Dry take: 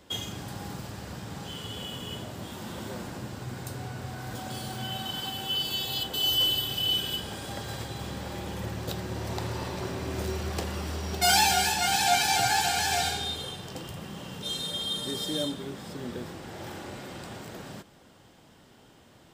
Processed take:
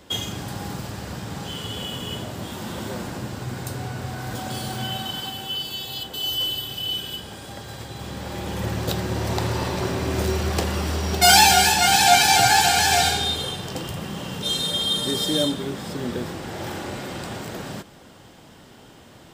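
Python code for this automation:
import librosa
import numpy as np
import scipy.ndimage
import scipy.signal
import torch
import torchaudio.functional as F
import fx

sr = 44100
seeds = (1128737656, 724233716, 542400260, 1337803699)

y = fx.gain(x, sr, db=fx.line((4.82, 6.5), (5.72, -0.5), (7.74, -0.5), (8.73, 8.5)))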